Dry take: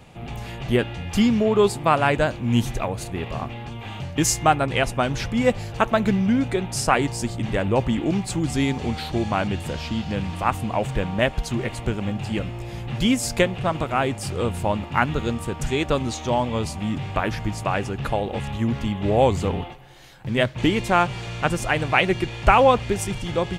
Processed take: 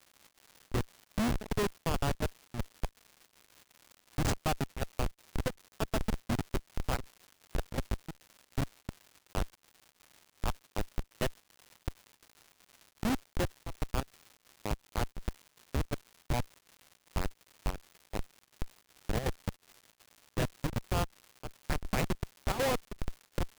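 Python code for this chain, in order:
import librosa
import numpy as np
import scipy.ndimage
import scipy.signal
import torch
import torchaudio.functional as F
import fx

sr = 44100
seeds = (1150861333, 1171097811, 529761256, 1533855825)

y = fx.schmitt(x, sr, flips_db=-15.0)
y = fx.dmg_crackle(y, sr, seeds[0], per_s=290.0, level_db=-38.0)
y = fx.chopper(y, sr, hz=2.7, depth_pct=65, duty_pct=80)
y = y * librosa.db_to_amplitude(-5.5)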